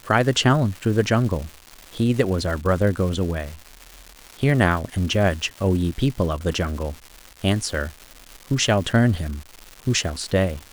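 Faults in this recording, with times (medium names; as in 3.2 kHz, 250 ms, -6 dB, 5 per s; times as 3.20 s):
crackle 420 per s -30 dBFS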